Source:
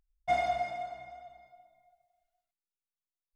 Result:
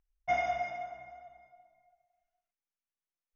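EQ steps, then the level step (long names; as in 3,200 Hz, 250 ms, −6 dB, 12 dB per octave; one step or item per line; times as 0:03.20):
dynamic equaliser 4,500 Hz, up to +6 dB, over −51 dBFS, Q 0.76
Butterworth band-reject 4,200 Hz, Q 1.9
Chebyshev low-pass with heavy ripple 6,400 Hz, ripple 3 dB
0.0 dB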